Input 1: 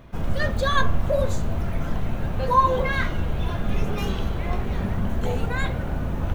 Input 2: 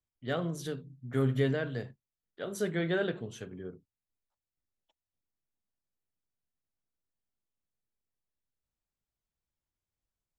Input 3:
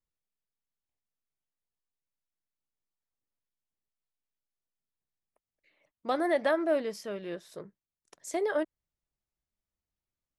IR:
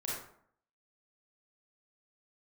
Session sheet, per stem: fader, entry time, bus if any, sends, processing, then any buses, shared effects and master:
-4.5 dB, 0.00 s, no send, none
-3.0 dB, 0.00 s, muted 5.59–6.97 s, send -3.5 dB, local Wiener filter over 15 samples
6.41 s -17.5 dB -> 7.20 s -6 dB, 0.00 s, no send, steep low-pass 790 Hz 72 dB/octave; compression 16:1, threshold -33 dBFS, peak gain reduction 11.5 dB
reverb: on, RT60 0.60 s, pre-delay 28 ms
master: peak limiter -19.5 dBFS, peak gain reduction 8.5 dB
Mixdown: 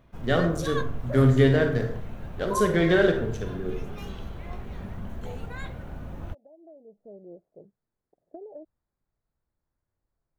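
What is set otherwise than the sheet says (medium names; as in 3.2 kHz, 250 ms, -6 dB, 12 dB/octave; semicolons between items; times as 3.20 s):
stem 1 -4.5 dB -> -11.5 dB; stem 2 -3.0 dB -> +6.0 dB; master: missing peak limiter -19.5 dBFS, peak gain reduction 8.5 dB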